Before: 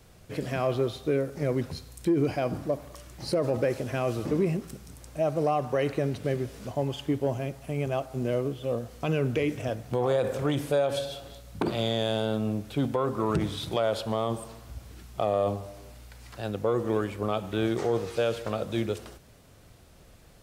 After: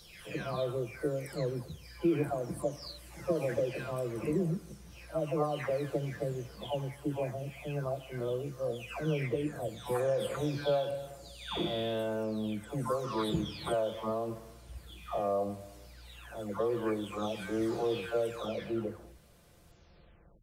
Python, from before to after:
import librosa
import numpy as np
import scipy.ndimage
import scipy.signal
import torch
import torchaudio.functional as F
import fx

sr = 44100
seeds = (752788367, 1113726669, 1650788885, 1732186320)

y = fx.spec_delay(x, sr, highs='early', ms=715)
y = y * 10.0 ** (-3.5 / 20.0)